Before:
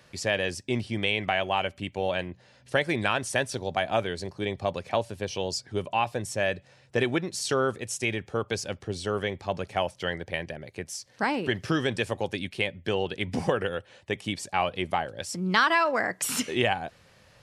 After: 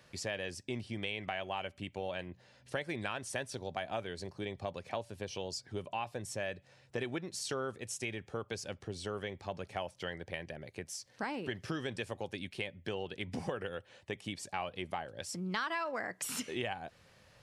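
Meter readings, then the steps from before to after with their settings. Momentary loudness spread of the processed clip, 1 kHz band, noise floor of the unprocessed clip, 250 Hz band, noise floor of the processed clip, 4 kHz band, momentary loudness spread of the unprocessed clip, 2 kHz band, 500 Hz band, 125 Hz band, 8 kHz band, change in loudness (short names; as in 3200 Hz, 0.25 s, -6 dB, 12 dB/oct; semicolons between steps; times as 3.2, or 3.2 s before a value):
6 LU, -12.0 dB, -59 dBFS, -10.5 dB, -64 dBFS, -10.5 dB, 8 LU, -12.0 dB, -11.0 dB, -10.0 dB, -8.5 dB, -11.0 dB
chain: compressor 2:1, threshold -34 dBFS, peak gain reduction 9.5 dB; gain -5 dB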